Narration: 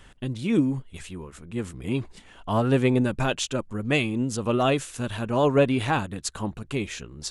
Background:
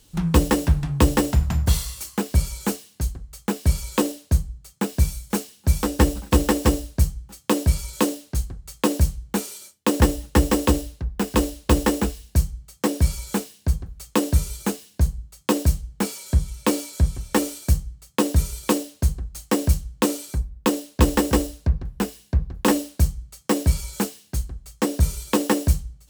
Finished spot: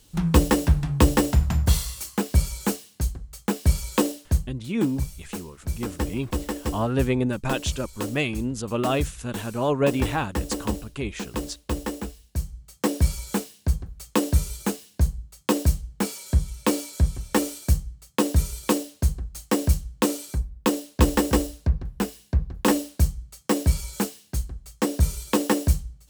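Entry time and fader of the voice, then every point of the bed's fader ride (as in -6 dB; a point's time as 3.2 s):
4.25 s, -2.0 dB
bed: 4.17 s -0.5 dB
4.92 s -10 dB
12.32 s -10 dB
12.73 s -1.5 dB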